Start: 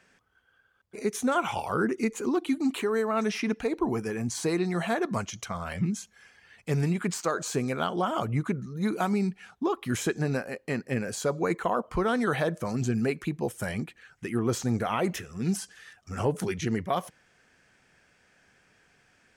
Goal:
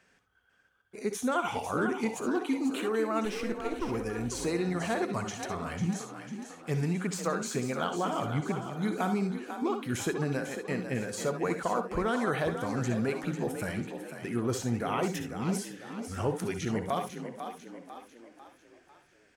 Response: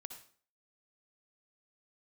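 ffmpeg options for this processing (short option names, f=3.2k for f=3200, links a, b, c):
-filter_complex "[0:a]asettb=1/sr,asplit=3[a][b][c];[a]atrim=end=3.254[d];[b]atrim=start=3.25:end=3.89,asetpts=PTS-STARTPTS,afade=t=in:d=0.004:c=qsin,afade=t=out:st=0.636:d=0.004:c=qsin,aeval=exprs='if(lt(val(0),0),0.251*val(0),val(0))':c=same[e];[c]atrim=start=3.886[f];[d][e]acrossfade=d=0.004:c1=hsin:c2=qsin[g];[g][f]acrossfade=d=0.004:c1=qsin:c2=hsin,asplit=6[h][i][j][k][l][m];[i]adelay=497,afreqshift=40,volume=-9dB[n];[j]adelay=994,afreqshift=80,volume=-15.6dB[o];[k]adelay=1491,afreqshift=120,volume=-22.1dB[p];[l]adelay=1988,afreqshift=160,volume=-28.7dB[q];[m]adelay=2485,afreqshift=200,volume=-35.2dB[r];[h][n][o][p][q][r]amix=inputs=6:normalize=0[s];[1:a]atrim=start_sample=2205,atrim=end_sample=3528[t];[s][t]afir=irnorm=-1:irlink=0,volume=2dB"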